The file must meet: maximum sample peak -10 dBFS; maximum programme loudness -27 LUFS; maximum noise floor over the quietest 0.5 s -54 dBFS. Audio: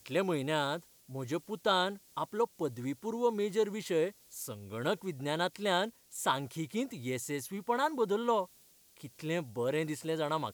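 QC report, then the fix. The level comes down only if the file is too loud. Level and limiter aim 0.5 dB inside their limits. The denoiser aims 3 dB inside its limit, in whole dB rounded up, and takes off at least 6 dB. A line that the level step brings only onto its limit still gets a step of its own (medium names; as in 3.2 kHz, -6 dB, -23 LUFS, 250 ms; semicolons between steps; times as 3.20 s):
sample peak -15.0 dBFS: pass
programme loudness -34.0 LUFS: pass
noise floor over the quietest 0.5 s -63 dBFS: pass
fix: none needed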